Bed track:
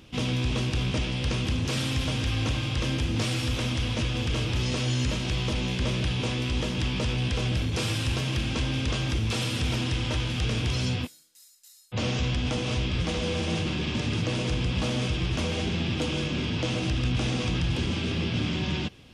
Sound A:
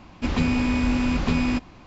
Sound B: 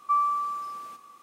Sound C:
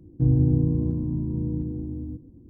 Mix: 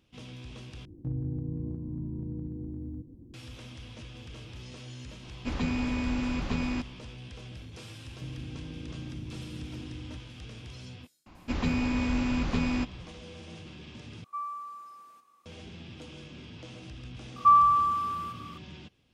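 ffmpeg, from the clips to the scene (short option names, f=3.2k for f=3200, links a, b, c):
-filter_complex "[3:a]asplit=2[a][b];[1:a]asplit=2[c][d];[2:a]asplit=2[e][f];[0:a]volume=-17.5dB[g];[a]acompressor=threshold=-32dB:ratio=2.5:attack=0.18:release=684:knee=1:detection=peak[h];[b]acompressor=threshold=-27dB:ratio=6:attack=3.2:release=140:knee=1:detection=peak[i];[f]equalizer=f=1.3k:w=2.4:g=11[j];[g]asplit=3[k][l][m];[k]atrim=end=0.854[n];[h]atrim=end=2.49,asetpts=PTS-STARTPTS,volume=-1.5dB[o];[l]atrim=start=3.336:end=14.244[p];[e]atrim=end=1.22,asetpts=PTS-STARTPTS,volume=-12.5dB[q];[m]atrim=start=15.456[r];[c]atrim=end=1.86,asetpts=PTS-STARTPTS,volume=-8dB,afade=t=in:d=0.004:c=hsin,afade=t=out:st=1.856:d=0.004:c=hsin,adelay=5230[s];[i]atrim=end=2.49,asetpts=PTS-STARTPTS,volume=-10dB,afade=t=in:d=0.004:c=hsin,afade=t=out:st=2.486:d=0.004:c=hsin,adelay=353682S[t];[d]atrim=end=1.86,asetpts=PTS-STARTPTS,volume=-6dB,afade=t=in:d=0.004:c=hsin,afade=t=out:st=1.856:d=0.004:c=hsin,adelay=11260[u];[j]atrim=end=1.22,asetpts=PTS-STARTPTS,volume=-3dB,afade=t=in:d=0.004:c=hsin,afade=t=out:st=1.216:d=0.004:c=hsin,adelay=17360[v];[n][o]acrossfade=d=0.004:c1=hsin:c2=hsin[w];[w][p]acrossfade=d=0.004:c1=hsin:c2=hsin[x];[x][q]acrossfade=d=0.004:c1=hsin:c2=hsin[y];[y][r]acrossfade=d=0.004:c1=hsin:c2=hsin[z];[z][s][t][u][v]amix=inputs=5:normalize=0"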